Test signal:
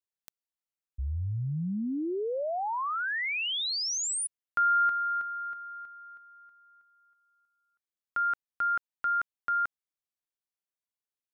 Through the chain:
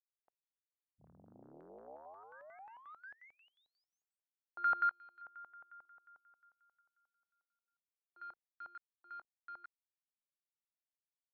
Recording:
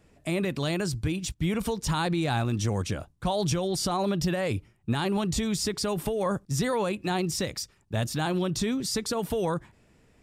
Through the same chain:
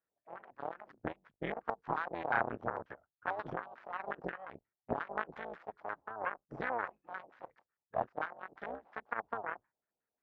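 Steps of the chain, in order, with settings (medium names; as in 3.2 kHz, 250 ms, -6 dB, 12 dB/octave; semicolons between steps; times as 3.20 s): octave divider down 2 oct, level 0 dB; spectral noise reduction 9 dB; Chebyshev shaper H 3 -9 dB, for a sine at -13.5 dBFS; band-pass filter 1.2 kHz, Q 0.63; LFO low-pass square 5.6 Hz 750–1600 Hz; trim +4 dB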